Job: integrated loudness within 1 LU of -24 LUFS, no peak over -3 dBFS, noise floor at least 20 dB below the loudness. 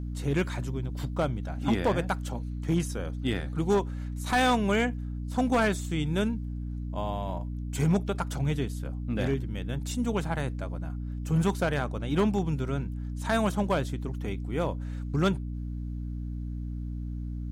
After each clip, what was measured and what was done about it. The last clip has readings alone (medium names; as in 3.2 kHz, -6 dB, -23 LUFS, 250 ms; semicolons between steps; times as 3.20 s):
clipped samples 0.6%; clipping level -18.0 dBFS; hum 60 Hz; highest harmonic 300 Hz; hum level -32 dBFS; loudness -30.0 LUFS; peak level -18.0 dBFS; loudness target -24.0 LUFS
-> clip repair -18 dBFS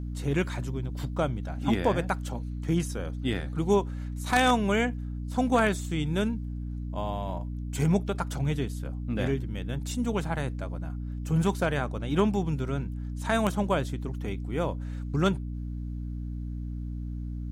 clipped samples 0.0%; hum 60 Hz; highest harmonic 300 Hz; hum level -32 dBFS
-> de-hum 60 Hz, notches 5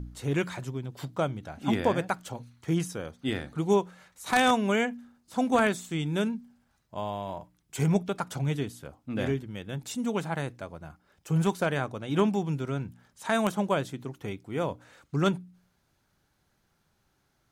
hum not found; loudness -29.5 LUFS; peak level -9.0 dBFS; loudness target -24.0 LUFS
-> trim +5.5 dB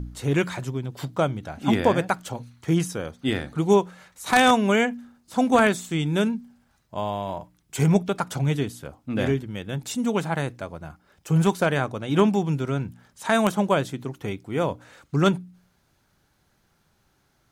loudness -24.0 LUFS; peak level -3.5 dBFS; noise floor -67 dBFS